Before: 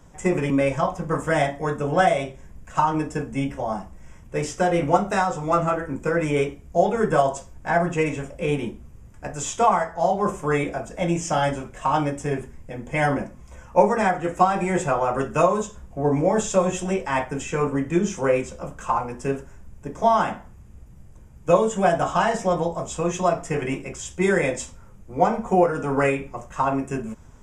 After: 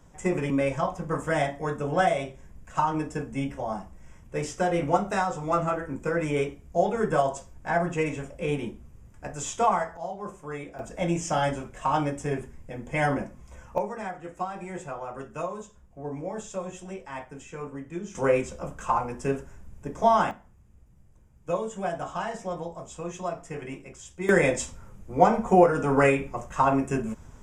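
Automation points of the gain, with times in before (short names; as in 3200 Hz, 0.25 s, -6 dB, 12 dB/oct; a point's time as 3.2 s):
-4.5 dB
from 9.97 s -14 dB
from 10.79 s -3.5 dB
from 13.78 s -14 dB
from 18.15 s -2 dB
from 20.31 s -11 dB
from 24.29 s +0.5 dB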